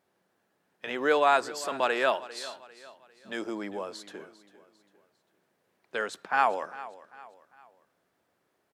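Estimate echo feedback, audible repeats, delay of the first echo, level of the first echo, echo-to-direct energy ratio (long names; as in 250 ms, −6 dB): 41%, 3, 399 ms, −17.0 dB, −16.0 dB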